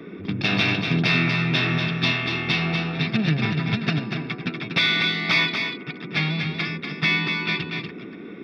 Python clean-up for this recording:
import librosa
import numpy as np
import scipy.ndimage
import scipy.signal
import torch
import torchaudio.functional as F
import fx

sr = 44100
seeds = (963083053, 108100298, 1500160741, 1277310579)

y = fx.noise_reduce(x, sr, print_start_s=7.9, print_end_s=8.4, reduce_db=30.0)
y = fx.fix_echo_inverse(y, sr, delay_ms=240, level_db=-6.0)